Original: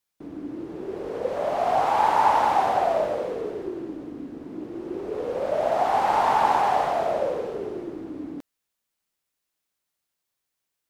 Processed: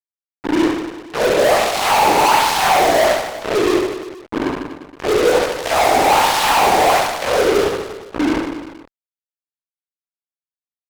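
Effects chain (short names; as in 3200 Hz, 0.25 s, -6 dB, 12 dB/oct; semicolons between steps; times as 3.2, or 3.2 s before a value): LFO band-pass sine 1.3 Hz 320–4900 Hz; fuzz box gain 47 dB, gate -41 dBFS; reverse bouncing-ball echo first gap 70 ms, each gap 1.15×, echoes 5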